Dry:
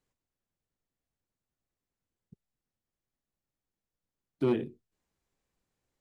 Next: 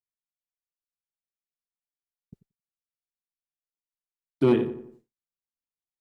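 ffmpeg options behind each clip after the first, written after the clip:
ffmpeg -i in.wav -filter_complex "[0:a]asplit=2[link_01][link_02];[link_02]adelay=89,lowpass=frequency=2100:poles=1,volume=-11dB,asplit=2[link_03][link_04];[link_04]adelay=89,lowpass=frequency=2100:poles=1,volume=0.45,asplit=2[link_05][link_06];[link_06]adelay=89,lowpass=frequency=2100:poles=1,volume=0.45,asplit=2[link_07][link_08];[link_08]adelay=89,lowpass=frequency=2100:poles=1,volume=0.45,asplit=2[link_09][link_10];[link_10]adelay=89,lowpass=frequency=2100:poles=1,volume=0.45[link_11];[link_03][link_05][link_07][link_09][link_11]amix=inputs=5:normalize=0[link_12];[link_01][link_12]amix=inputs=2:normalize=0,agate=range=-33dB:threshold=-55dB:ratio=3:detection=peak,volume=7dB" out.wav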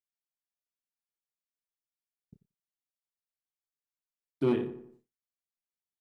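ffmpeg -i in.wav -filter_complex "[0:a]asplit=2[link_01][link_02];[link_02]adelay=29,volume=-10.5dB[link_03];[link_01][link_03]amix=inputs=2:normalize=0,volume=-7dB" out.wav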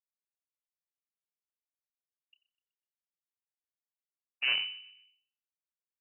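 ffmpeg -i in.wav -filter_complex "[0:a]aeval=exprs='0.15*(cos(1*acos(clip(val(0)/0.15,-1,1)))-cos(1*PI/2))+0.0266*(cos(3*acos(clip(val(0)/0.15,-1,1)))-cos(3*PI/2))+0.0596*(cos(4*acos(clip(val(0)/0.15,-1,1)))-cos(4*PI/2))':channel_layout=same,asplit=2[link_01][link_02];[link_02]adelay=125,lowpass=frequency=1600:poles=1,volume=-19.5dB,asplit=2[link_03][link_04];[link_04]adelay=125,lowpass=frequency=1600:poles=1,volume=0.47,asplit=2[link_05][link_06];[link_06]adelay=125,lowpass=frequency=1600:poles=1,volume=0.47,asplit=2[link_07][link_08];[link_08]adelay=125,lowpass=frequency=1600:poles=1,volume=0.47[link_09];[link_01][link_03][link_05][link_07][link_09]amix=inputs=5:normalize=0,lowpass=frequency=2600:width_type=q:width=0.5098,lowpass=frequency=2600:width_type=q:width=0.6013,lowpass=frequency=2600:width_type=q:width=0.9,lowpass=frequency=2600:width_type=q:width=2.563,afreqshift=-3000,volume=-5.5dB" out.wav

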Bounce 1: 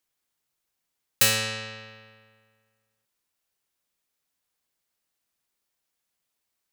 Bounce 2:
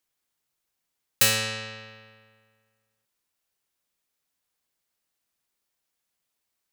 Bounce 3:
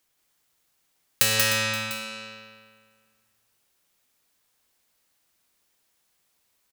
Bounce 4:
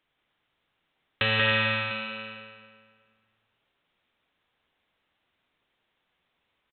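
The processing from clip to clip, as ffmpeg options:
ffmpeg -i in.wav -af anull out.wav
ffmpeg -i in.wav -filter_complex "[0:a]acompressor=threshold=-28dB:ratio=4,asplit=2[link_01][link_02];[link_02]aecho=0:1:102|185|304|526|698:0.133|0.668|0.266|0.119|0.15[link_03];[link_01][link_03]amix=inputs=2:normalize=0,volume=8dB" out.wav
ffmpeg -i in.wav -af "flanger=delay=6.6:depth=6.5:regen=-67:speed=0.54:shape=triangular,aresample=8000,aresample=44100,volume=6dB" out.wav

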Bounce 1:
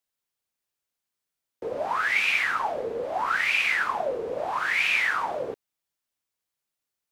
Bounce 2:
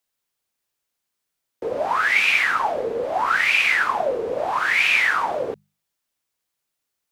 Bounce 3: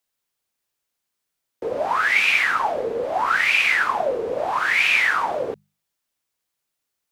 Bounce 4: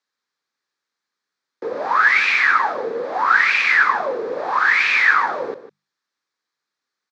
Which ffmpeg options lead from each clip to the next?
ffmpeg -i in.wav -af "bandreject=frequency=50:width_type=h:width=6,bandreject=frequency=100:width_type=h:width=6,bandreject=frequency=150:width_type=h:width=6,bandreject=frequency=200:width_type=h:width=6,volume=5.5dB" out.wav
ffmpeg -i in.wav -af anull out.wav
ffmpeg -i in.wav -af "highpass=210,equalizer=frequency=650:width_type=q:width=4:gain=-7,equalizer=frequency=1200:width_type=q:width=4:gain=5,equalizer=frequency=1700:width_type=q:width=4:gain=6,equalizer=frequency=2900:width_type=q:width=4:gain=-8,equalizer=frequency=4200:width_type=q:width=4:gain=3,lowpass=frequency=5900:width=0.5412,lowpass=frequency=5900:width=1.3066,aecho=1:1:152:0.211,volume=1.5dB" out.wav

